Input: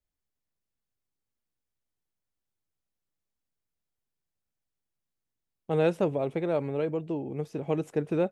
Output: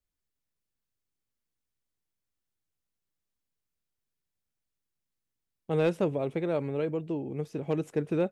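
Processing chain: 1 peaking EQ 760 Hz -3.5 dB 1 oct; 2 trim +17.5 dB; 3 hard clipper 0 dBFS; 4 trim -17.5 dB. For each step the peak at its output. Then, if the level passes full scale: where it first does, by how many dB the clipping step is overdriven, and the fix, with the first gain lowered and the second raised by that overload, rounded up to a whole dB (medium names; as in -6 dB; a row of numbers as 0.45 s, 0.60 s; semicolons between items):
-14.5 dBFS, +3.0 dBFS, 0.0 dBFS, -17.5 dBFS; step 2, 3.0 dB; step 2 +14.5 dB, step 4 -14.5 dB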